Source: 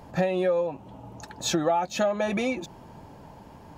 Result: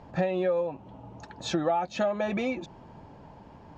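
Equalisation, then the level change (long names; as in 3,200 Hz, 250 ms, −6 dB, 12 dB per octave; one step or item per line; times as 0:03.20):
high-frequency loss of the air 120 metres
−2.0 dB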